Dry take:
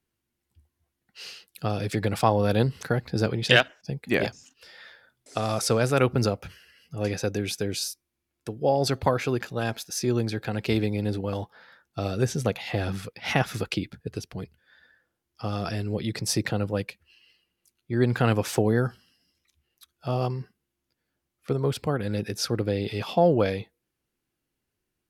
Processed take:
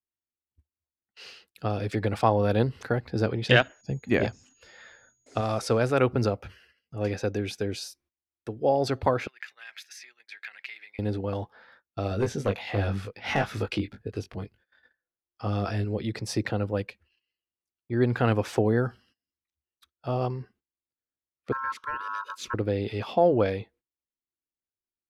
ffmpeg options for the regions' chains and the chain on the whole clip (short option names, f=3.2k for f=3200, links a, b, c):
-filter_complex "[0:a]asettb=1/sr,asplit=3[a][b][c];[a]atrim=end=3.494[d];[b]atrim=start=3.49:end=5.41,asetpts=PTS-STARTPTS,afade=t=in:d=0.004:c=qsin,afade=t=out:st=1.916:d=0.004:c=qsin,bass=f=250:g=6,treble=f=4k:g=-2,aeval=exprs='val(0)+0.00224*sin(2*PI*6700*n/s)':c=same[e];[c]atrim=start=5.406[f];[d][e]acrossfade=d=0.004:c1=hsin:c2=qsin[g];[g][f]acrossfade=d=0.004:c1=qsin:c2=hsin,asettb=1/sr,asplit=3[h][i][j];[h]atrim=end=9.274[k];[i]atrim=start=9.27:end=10.99,asetpts=PTS-STARTPTS,afade=t=in:d=0.004:c=qsin,afade=t=out:st=1.716:d=0.004:c=qsin,acompressor=threshold=-35dB:ratio=5:attack=3.2:release=140:knee=1:detection=peak,highpass=f=2k:t=q:w=4.2,agate=range=-33dB:threshold=-51dB:ratio=3:release=100:detection=peak[l];[j]atrim=start=10.986[m];[k][l]acrossfade=d=0.004:c1=hsin:c2=qsin[n];[n][m]acrossfade=d=0.004:c1=qsin:c2=hsin,asettb=1/sr,asplit=3[o][p][q];[o]atrim=end=12.094[r];[p]atrim=start=12.09:end=15.85,asetpts=PTS-STARTPTS,afade=t=in:d=0.004:c=qsin,afade=t=out:st=3.756:d=0.004:c=qsin,volume=16.5dB,asoftclip=hard,volume=-16.5dB,asplit=2[s][t];[t]adelay=20,volume=-4.5dB[u];[s][u]amix=inputs=2:normalize=0,atrim=end_sample=165816[v];[q]atrim=start=15.846[w];[r][v]acrossfade=d=0.004:c1=hsin:c2=qsin[x];[x][w]acrossfade=d=0.004:c1=qsin:c2=hsin,asettb=1/sr,asplit=3[y][z][aa];[y]atrim=end=21.524[ab];[z]atrim=start=21.52:end=22.54,asetpts=PTS-STARTPTS,afade=t=in:d=0.004:c=qsin,afade=t=out:st=1.016:d=0.004:c=qsin,equalizer=f=930:t=o:w=1.4:g=-11.5,aeval=exprs='val(0)*sin(2*PI*1200*n/s)':c=same,asuperstop=centerf=740:order=20:qfactor=2.7[ac];[aa]atrim=start=22.536[ad];[ab][ac]acrossfade=d=0.004:c1=hsin:c2=qsin[ae];[ae][ad]acrossfade=d=0.004:c1=qsin:c2=hsin,agate=range=-21dB:threshold=-55dB:ratio=16:detection=peak,lowpass=f=2.4k:p=1,equalizer=f=160:w=5:g=-13"